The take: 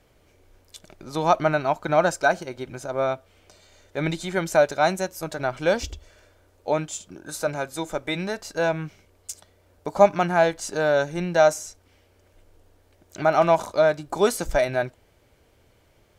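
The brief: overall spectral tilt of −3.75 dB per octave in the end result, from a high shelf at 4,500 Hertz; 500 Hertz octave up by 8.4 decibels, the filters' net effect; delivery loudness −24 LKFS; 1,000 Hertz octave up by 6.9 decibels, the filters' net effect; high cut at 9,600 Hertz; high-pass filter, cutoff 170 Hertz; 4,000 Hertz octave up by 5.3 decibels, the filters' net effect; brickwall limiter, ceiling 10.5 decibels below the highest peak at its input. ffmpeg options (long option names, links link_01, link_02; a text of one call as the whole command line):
ffmpeg -i in.wav -af "highpass=170,lowpass=9600,equalizer=frequency=500:width_type=o:gain=9,equalizer=frequency=1000:width_type=o:gain=5,equalizer=frequency=4000:width_type=o:gain=3,highshelf=frequency=4500:gain=6,volume=-5dB,alimiter=limit=-10.5dB:level=0:latency=1" out.wav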